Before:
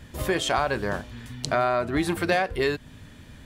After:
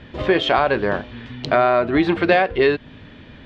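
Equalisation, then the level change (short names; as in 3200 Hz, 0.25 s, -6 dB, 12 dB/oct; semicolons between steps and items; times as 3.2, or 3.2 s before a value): LPF 3400 Hz 24 dB/oct; bell 400 Hz +8.5 dB 2.5 oct; high shelf 2100 Hz +11.5 dB; 0.0 dB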